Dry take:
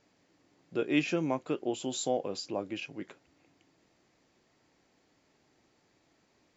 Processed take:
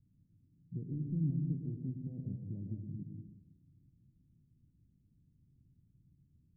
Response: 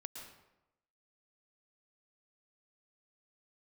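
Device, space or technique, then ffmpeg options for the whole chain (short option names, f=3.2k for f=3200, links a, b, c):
club heard from the street: -filter_complex "[0:a]alimiter=limit=-23dB:level=0:latency=1,lowpass=f=150:w=0.5412,lowpass=f=150:w=1.3066[a];[1:a]atrim=start_sample=2205[b];[a][b]afir=irnorm=-1:irlink=0,volume=17dB"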